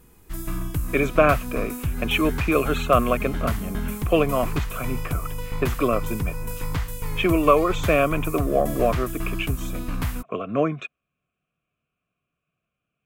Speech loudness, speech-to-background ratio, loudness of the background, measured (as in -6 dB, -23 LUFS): -23.5 LUFS, 7.0 dB, -30.5 LUFS